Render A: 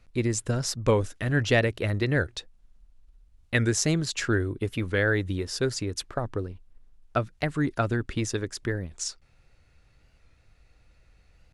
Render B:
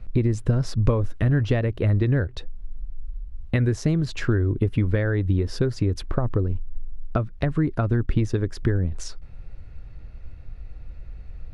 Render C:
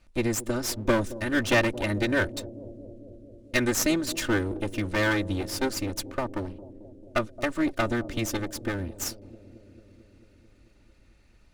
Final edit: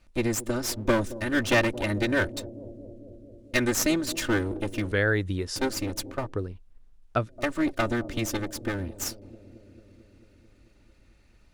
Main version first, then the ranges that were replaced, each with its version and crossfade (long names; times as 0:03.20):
C
0:04.92–0:05.56: punch in from A
0:06.24–0:07.32: punch in from A, crossfade 0.24 s
not used: B